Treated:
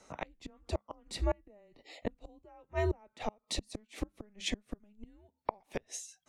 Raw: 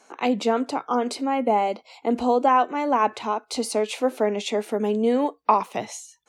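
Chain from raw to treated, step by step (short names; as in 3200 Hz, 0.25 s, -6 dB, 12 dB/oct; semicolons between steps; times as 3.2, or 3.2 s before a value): flipped gate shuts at -16 dBFS, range -34 dB; frequency shift -210 Hz; gain -4.5 dB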